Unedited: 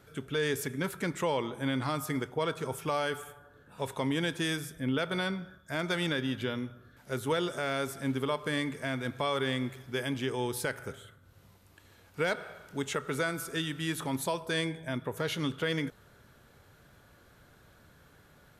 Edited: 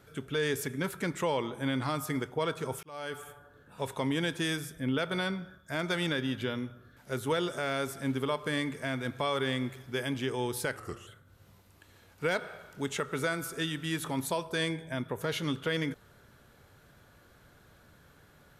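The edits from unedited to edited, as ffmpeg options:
ffmpeg -i in.wav -filter_complex "[0:a]asplit=4[link_01][link_02][link_03][link_04];[link_01]atrim=end=2.83,asetpts=PTS-STARTPTS,afade=type=out:start_time=2.826:duration=0.004:curve=hsin[link_05];[link_02]atrim=start=2.83:end=10.764,asetpts=PTS-STARTPTS,afade=type=in:duration=0.48[link_06];[link_03]atrim=start=10.76:end=11.03,asetpts=PTS-STARTPTS,asetrate=38367,aresample=44100,atrim=end_sample=13686,asetpts=PTS-STARTPTS[link_07];[link_04]atrim=start=11.026[link_08];[link_05][link_06]concat=n=2:v=0:a=1[link_09];[link_09][link_07]acrossfade=duration=0.004:curve1=hsin:curve2=hsin[link_10];[link_10][link_08]acrossfade=duration=0.004:curve1=hsin:curve2=hsin" out.wav

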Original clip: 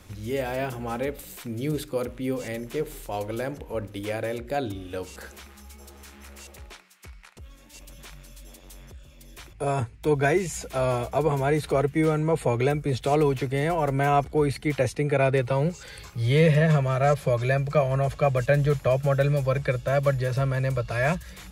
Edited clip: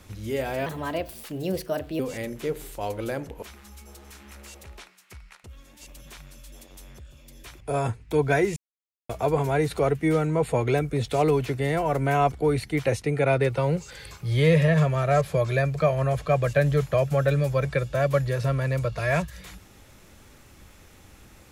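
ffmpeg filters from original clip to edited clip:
ffmpeg -i in.wav -filter_complex "[0:a]asplit=6[link_01][link_02][link_03][link_04][link_05][link_06];[link_01]atrim=end=0.664[link_07];[link_02]atrim=start=0.66:end=2.3,asetpts=PTS-STARTPTS,asetrate=54243,aresample=44100[link_08];[link_03]atrim=start=2.296:end=3.732[link_09];[link_04]atrim=start=5.348:end=10.49,asetpts=PTS-STARTPTS,afade=type=out:start_time=5.138:duration=0.004:curve=hsin[link_10];[link_05]atrim=start=10.49:end=11.02,asetpts=PTS-STARTPTS,volume=0[link_11];[link_06]atrim=start=11.02,asetpts=PTS-STARTPTS,afade=type=in:duration=0.004:curve=hsin[link_12];[link_07][link_08]acrossfade=duration=0.004:curve1=hsin:curve2=hsin[link_13];[link_13][link_09]acrossfade=duration=0.004:curve1=hsin:curve2=hsin[link_14];[link_10][link_11][link_12]concat=n=3:v=0:a=1[link_15];[link_14][link_15]acrossfade=duration=0.004:curve1=hsin:curve2=hsin" out.wav

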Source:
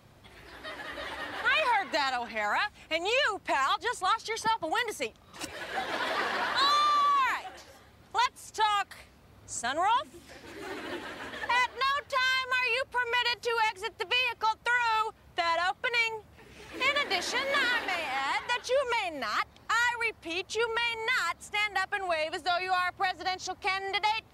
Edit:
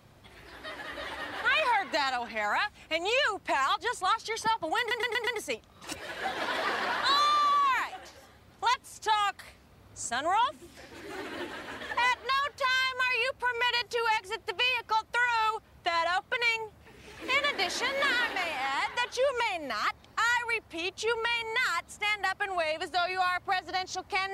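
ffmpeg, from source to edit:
ffmpeg -i in.wav -filter_complex "[0:a]asplit=5[link_01][link_02][link_03][link_04][link_05];[link_01]atrim=end=4.912[link_06];[link_02]atrim=start=4.788:end=4.912[link_07];[link_03]atrim=start=4.788:end=4.912[link_08];[link_04]atrim=start=4.788:end=4.912[link_09];[link_05]atrim=start=4.788[link_10];[link_06][link_07]acrossfade=duration=0.004:curve1=hsin:curve2=hsin[link_11];[link_11][link_08]acrossfade=duration=0.004:curve1=hsin:curve2=hsin[link_12];[link_12][link_09]acrossfade=duration=0.004:curve1=hsin:curve2=hsin[link_13];[link_13][link_10]acrossfade=duration=0.004:curve1=hsin:curve2=hsin" out.wav

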